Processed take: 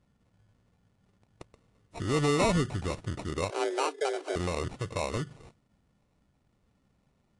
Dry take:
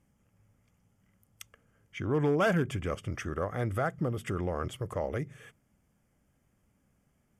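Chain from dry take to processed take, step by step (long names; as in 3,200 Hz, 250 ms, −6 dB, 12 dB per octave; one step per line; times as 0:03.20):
sample-rate reduction 1,600 Hz, jitter 0%
0:03.50–0:04.36: frequency shifter +270 Hz
level +1 dB
AAC 48 kbit/s 22,050 Hz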